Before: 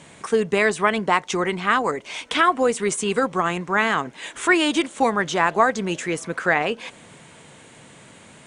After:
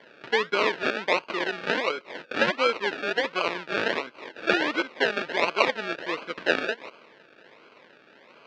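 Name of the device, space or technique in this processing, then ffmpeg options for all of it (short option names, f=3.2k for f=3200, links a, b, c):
circuit-bent sampling toy: -af "acrusher=samples=34:mix=1:aa=0.000001:lfo=1:lforange=20.4:lforate=1.4,highpass=490,equalizer=f=760:t=q:w=4:g=-9,equalizer=f=1.6k:t=q:w=4:g=5,equalizer=f=2.5k:t=q:w=4:g=4,lowpass=f=4.3k:w=0.5412,lowpass=f=4.3k:w=1.3066,volume=-1dB"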